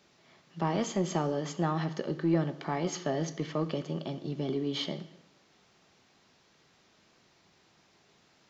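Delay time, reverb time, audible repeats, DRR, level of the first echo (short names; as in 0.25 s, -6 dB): none, 0.90 s, none, 11.0 dB, none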